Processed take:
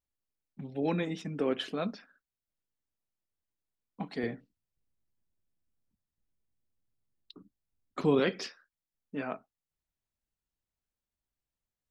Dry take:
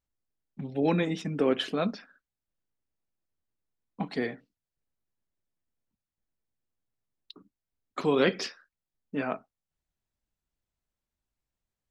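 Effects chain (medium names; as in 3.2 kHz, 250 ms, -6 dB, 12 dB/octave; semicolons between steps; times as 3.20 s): 4.23–8.20 s: bass shelf 360 Hz +10 dB; trim -5 dB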